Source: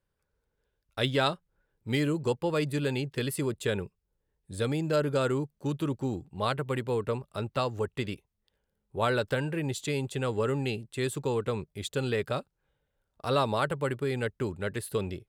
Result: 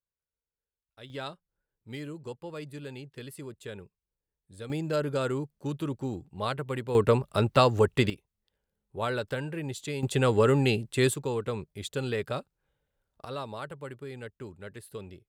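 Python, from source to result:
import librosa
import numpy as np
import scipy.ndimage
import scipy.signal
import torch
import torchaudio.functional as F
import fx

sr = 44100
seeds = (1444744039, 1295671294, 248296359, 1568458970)

y = fx.gain(x, sr, db=fx.steps((0.0, -19.5), (1.1, -11.5), (4.7, -2.0), (6.95, 8.5), (8.1, -3.5), (10.03, 6.5), (11.14, -1.5), (13.25, -10.5)))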